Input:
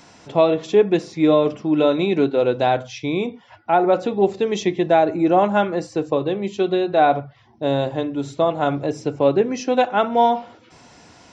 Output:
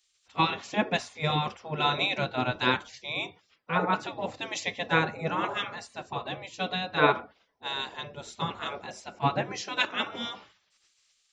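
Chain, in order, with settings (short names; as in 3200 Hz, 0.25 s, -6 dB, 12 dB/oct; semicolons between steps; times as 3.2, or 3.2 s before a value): spectral gate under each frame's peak -15 dB weak; three-band expander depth 70%; gain +1.5 dB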